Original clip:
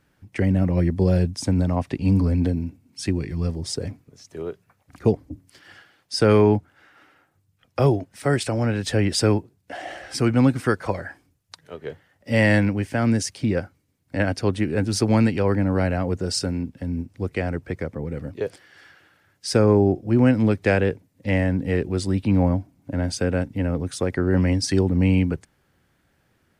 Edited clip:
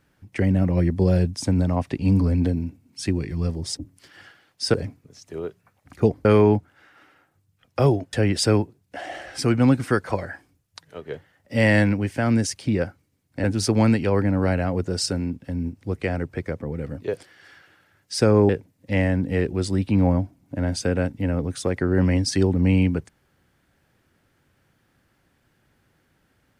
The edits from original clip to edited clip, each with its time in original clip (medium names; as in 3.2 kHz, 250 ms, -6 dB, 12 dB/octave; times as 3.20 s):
5.28–6.25 s: move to 3.77 s
8.13–8.89 s: delete
14.20–14.77 s: delete
19.82–20.85 s: delete